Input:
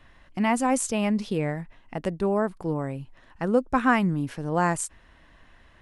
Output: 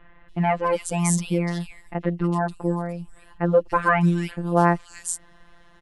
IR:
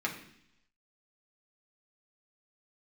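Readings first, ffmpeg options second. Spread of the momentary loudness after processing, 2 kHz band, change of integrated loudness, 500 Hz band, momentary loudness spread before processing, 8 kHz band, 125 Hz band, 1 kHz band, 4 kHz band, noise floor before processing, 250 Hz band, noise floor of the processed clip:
12 LU, +2.0 dB, +2.5 dB, +3.0 dB, 12 LU, +3.0 dB, +6.5 dB, +3.0 dB, 0.0 dB, -56 dBFS, +1.0 dB, -52 dBFS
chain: -filter_complex "[0:a]afftfilt=real='hypot(re,im)*cos(PI*b)':imag='0':win_size=1024:overlap=0.75,acrossover=split=2800[a][b];[b]adelay=290[c];[a][c]amix=inputs=2:normalize=0,volume=6.5dB"

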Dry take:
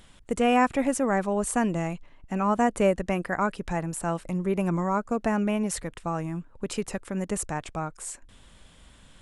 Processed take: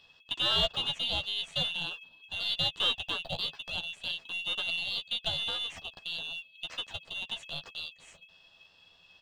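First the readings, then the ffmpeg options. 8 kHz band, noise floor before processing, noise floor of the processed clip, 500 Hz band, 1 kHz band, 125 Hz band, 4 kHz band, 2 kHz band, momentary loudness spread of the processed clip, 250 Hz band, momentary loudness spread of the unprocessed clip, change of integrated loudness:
-16.5 dB, -54 dBFS, -61 dBFS, -16.5 dB, -15.5 dB, -14.5 dB, +16.5 dB, -1.5 dB, 12 LU, -24.5 dB, 12 LU, -4.5 dB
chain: -filter_complex "[0:a]afftfilt=real='real(if(lt(b,272),68*(eq(floor(b/68),0)*1+eq(floor(b/68),1)*3+eq(floor(b/68),2)*0+eq(floor(b/68),3)*2)+mod(b,68),b),0)':imag='imag(if(lt(b,272),68*(eq(floor(b/68),0)*1+eq(floor(b/68),1)*3+eq(floor(b/68),2)*0+eq(floor(b/68),3)*2)+mod(b,68),b),0)':win_size=2048:overlap=0.75,highpass=f=120:w=0.5412,highpass=f=120:w=1.3066,equalizer=f=190:t=q:w=4:g=6,equalizer=f=320:t=q:w=4:g=8,equalizer=f=500:t=q:w=4:g=4,equalizer=f=800:t=q:w=4:g=5,equalizer=f=1.3k:t=q:w=4:g=3,equalizer=f=2.3k:t=q:w=4:g=5,lowpass=f=5.6k:w=0.5412,lowpass=f=5.6k:w=1.3066,aeval=exprs='val(0)*sin(2*PI*350*n/s)':c=same,aeval=exprs='0.398*(cos(1*acos(clip(val(0)/0.398,-1,1)))-cos(1*PI/2))+0.0316*(cos(7*acos(clip(val(0)/0.398,-1,1)))-cos(7*PI/2))+0.00501*(cos(8*acos(clip(val(0)/0.398,-1,1)))-cos(8*PI/2))':c=same,acrossover=split=2800[a][b];[a]acrusher=bits=6:mode=log:mix=0:aa=0.000001[c];[c][b]amix=inputs=2:normalize=0,asoftclip=type=tanh:threshold=-16.5dB,acrossover=split=4200[d][e];[e]acompressor=threshold=-48dB:ratio=4:attack=1:release=60[f];[d][f]amix=inputs=2:normalize=0,asplit=2[g][h];[h]adelay=12,volume=-6dB[i];[g][i]amix=inputs=2:normalize=0"

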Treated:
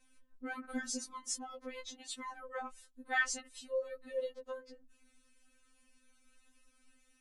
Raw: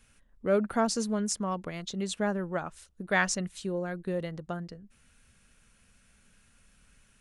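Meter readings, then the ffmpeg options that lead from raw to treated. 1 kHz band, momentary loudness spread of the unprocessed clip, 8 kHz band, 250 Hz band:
-9.0 dB, 12 LU, -5.5 dB, -15.5 dB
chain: -af "afftfilt=real='re*3.46*eq(mod(b,12),0)':imag='im*3.46*eq(mod(b,12),0)':win_size=2048:overlap=0.75,volume=-4dB"

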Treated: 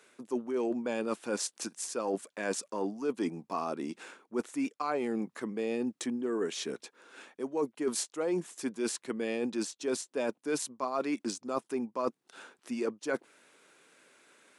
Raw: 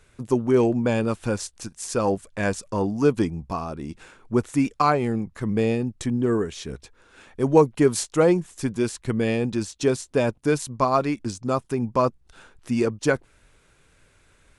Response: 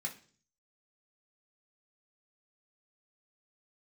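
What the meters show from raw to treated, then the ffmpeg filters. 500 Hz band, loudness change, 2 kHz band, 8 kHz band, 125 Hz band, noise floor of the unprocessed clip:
-10.5 dB, -11.0 dB, -9.0 dB, -4.0 dB, -23.5 dB, -60 dBFS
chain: -af "highpass=f=240:w=0.5412,highpass=f=240:w=1.3066,areverse,acompressor=threshold=-29dB:ratio=8,areverse"

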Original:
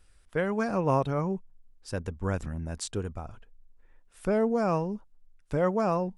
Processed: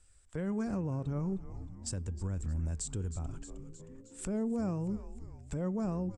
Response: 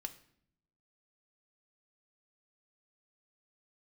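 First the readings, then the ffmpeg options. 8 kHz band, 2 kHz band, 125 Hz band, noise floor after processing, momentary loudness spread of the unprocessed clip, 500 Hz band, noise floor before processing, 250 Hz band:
+1.0 dB, -15.0 dB, -2.5 dB, -60 dBFS, 12 LU, -12.5 dB, -60 dBFS, -3.5 dB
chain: -filter_complex "[0:a]equalizer=f=76:w=1.5:g=7.5,acrossover=split=330[a][b];[b]acompressor=threshold=-47dB:ratio=2.5[c];[a][c]amix=inputs=2:normalize=0,agate=range=-8dB:threshold=-53dB:ratio=16:detection=peak,lowpass=f=7.8k:t=q:w=7.4,asplit=6[d][e][f][g][h][i];[e]adelay=312,afreqshift=-120,volume=-16dB[j];[f]adelay=624,afreqshift=-240,volume=-20.9dB[k];[g]adelay=936,afreqshift=-360,volume=-25.8dB[l];[h]adelay=1248,afreqshift=-480,volume=-30.6dB[m];[i]adelay=1560,afreqshift=-600,volume=-35.5dB[n];[d][j][k][l][m][n]amix=inputs=6:normalize=0,alimiter=level_in=3.5dB:limit=-24dB:level=0:latency=1:release=186,volume=-3.5dB,asoftclip=type=tanh:threshold=-18dB,bandreject=f=405.4:t=h:w=4,bandreject=f=810.8:t=h:w=4,bandreject=f=1.2162k:t=h:w=4,bandreject=f=1.6216k:t=h:w=4,bandreject=f=2.027k:t=h:w=4,bandreject=f=2.4324k:t=h:w=4,bandreject=f=2.8378k:t=h:w=4,bandreject=f=3.2432k:t=h:w=4,asplit=2[o][p];[1:a]atrim=start_sample=2205[q];[p][q]afir=irnorm=-1:irlink=0,volume=-13dB[r];[o][r]amix=inputs=2:normalize=0"

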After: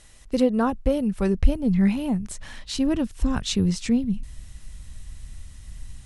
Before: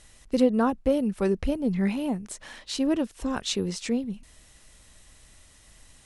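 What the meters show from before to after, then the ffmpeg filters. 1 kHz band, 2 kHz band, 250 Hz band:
+1.0 dB, +1.0 dB, +3.5 dB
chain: -af "asubboost=boost=8:cutoff=160,volume=1.5dB"

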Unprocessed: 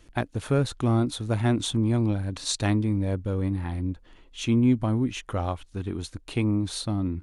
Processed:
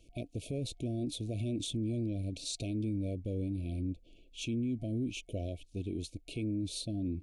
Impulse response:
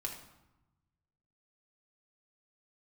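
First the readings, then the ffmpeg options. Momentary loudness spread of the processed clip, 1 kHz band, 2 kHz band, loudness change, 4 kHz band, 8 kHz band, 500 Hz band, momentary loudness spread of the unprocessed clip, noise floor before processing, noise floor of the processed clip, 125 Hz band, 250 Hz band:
6 LU, under -20 dB, -14.5 dB, -10.5 dB, -8.0 dB, -8.5 dB, -10.5 dB, 10 LU, -55 dBFS, -61 dBFS, -11.0 dB, -10.0 dB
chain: -af "afftfilt=real='re*(1-between(b*sr/4096,710,2200))':imag='im*(1-between(b*sr/4096,710,2200))':win_size=4096:overlap=0.75,adynamicequalizer=threshold=0.00891:dfrequency=310:dqfactor=2.7:tfrequency=310:tqfactor=2.7:attack=5:release=100:ratio=0.375:range=2:mode=boostabove:tftype=bell,alimiter=limit=-22dB:level=0:latency=1:release=35,volume=-6.5dB"

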